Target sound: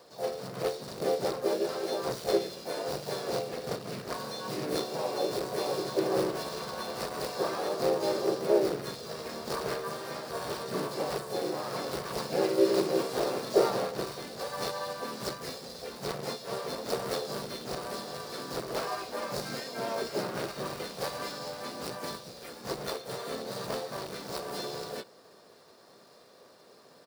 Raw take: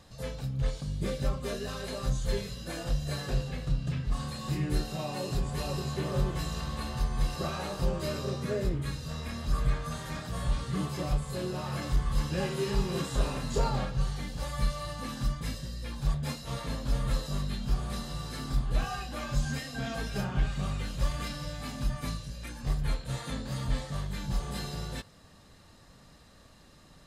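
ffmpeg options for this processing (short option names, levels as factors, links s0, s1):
-filter_complex "[0:a]acrusher=bits=2:mode=log:mix=0:aa=0.000001,superequalizer=7b=3.55:8b=2.24:10b=1.58:14b=3.55:16b=2.82,asplit=4[s0][s1][s2][s3];[s1]asetrate=37084,aresample=44100,atempo=1.18921,volume=0.631[s4];[s2]asetrate=58866,aresample=44100,atempo=0.749154,volume=0.398[s5];[s3]asetrate=66075,aresample=44100,atempo=0.66742,volume=0.251[s6];[s0][s4][s5][s6]amix=inputs=4:normalize=0,highpass=260,equalizer=f=9000:t=o:w=2.2:g=-10,volume=0.708"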